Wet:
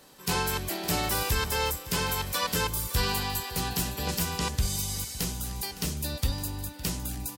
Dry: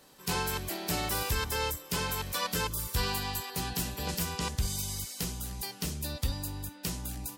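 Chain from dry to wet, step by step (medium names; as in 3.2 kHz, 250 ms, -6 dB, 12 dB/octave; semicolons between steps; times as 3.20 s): feedback delay 561 ms, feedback 37%, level -16 dB; trim +3.5 dB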